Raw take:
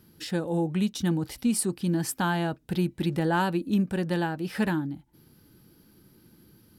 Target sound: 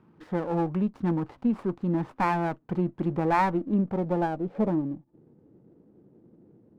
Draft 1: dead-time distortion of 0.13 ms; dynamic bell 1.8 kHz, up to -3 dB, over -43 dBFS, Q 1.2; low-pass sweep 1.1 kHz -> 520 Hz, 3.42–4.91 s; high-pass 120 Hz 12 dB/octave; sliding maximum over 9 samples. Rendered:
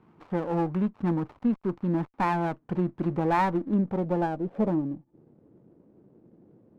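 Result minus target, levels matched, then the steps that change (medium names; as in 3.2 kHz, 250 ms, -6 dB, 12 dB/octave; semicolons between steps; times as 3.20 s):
dead-time distortion: distortion +8 dB
change: dead-time distortion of 0.032 ms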